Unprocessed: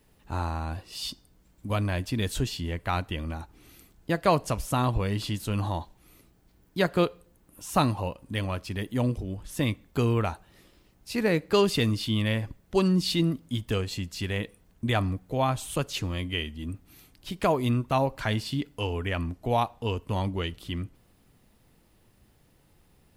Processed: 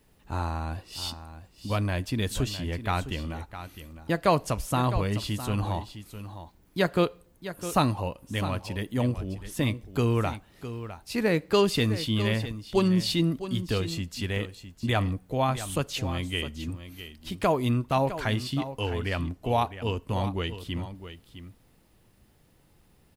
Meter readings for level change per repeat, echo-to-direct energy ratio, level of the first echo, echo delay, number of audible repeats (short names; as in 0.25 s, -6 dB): no steady repeat, -12.0 dB, -12.0 dB, 0.658 s, 1